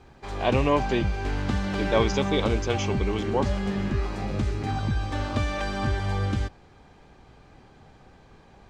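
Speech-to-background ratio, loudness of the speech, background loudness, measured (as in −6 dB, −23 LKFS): 1.0 dB, −27.5 LKFS, −28.5 LKFS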